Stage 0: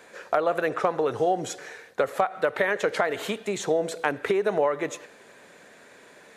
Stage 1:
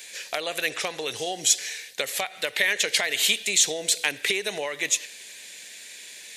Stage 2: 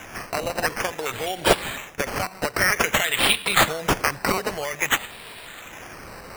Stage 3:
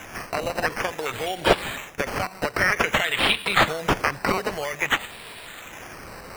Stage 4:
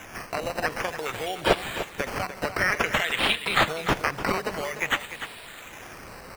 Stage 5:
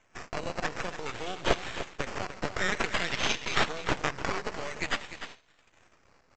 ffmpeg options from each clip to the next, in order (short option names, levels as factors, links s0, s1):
-af "aexciter=amount=10.3:drive=7.7:freq=2000,volume=0.376"
-af "asubboost=boost=10:cutoff=100,acrusher=samples=10:mix=1:aa=0.000001:lfo=1:lforange=6:lforate=0.52,volume=1.41"
-filter_complex "[0:a]acrossover=split=4500[s0][s1];[s1]acompressor=threshold=0.0178:ratio=4:attack=1:release=60[s2];[s0][s2]amix=inputs=2:normalize=0"
-af "aecho=1:1:297:0.282,volume=0.708"
-af "agate=range=0.112:threshold=0.0112:ratio=16:detection=peak,aresample=16000,aeval=exprs='max(val(0),0)':c=same,aresample=44100,volume=0.891"